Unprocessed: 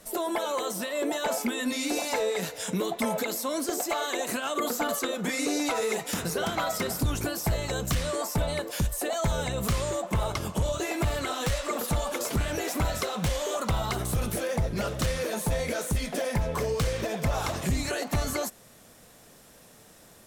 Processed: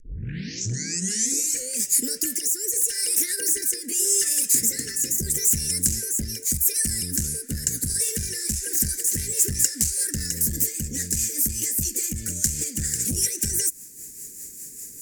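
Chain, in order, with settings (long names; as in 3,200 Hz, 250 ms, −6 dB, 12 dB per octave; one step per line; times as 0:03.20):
turntable start at the beginning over 2.59 s
wrong playback speed 33 rpm record played at 45 rpm
upward compression, threshold −43 dBFS
elliptic band-stop filter 460–1,700 Hz, stop band 40 dB
high shelf with overshoot 4,900 Hz +13.5 dB, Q 3
rotating-speaker cabinet horn 0.85 Hz, later 5 Hz, at 0:08.51
dynamic equaliser 440 Hz, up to −4 dB, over −47 dBFS, Q 0.81
saturating transformer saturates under 890 Hz
level +1.5 dB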